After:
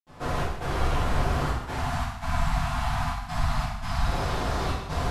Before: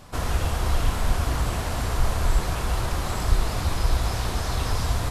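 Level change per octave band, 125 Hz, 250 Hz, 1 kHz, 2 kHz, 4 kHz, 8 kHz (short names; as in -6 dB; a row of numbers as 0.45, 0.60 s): -3.5, 0.0, +1.5, 0.0, -4.0, -8.5 dB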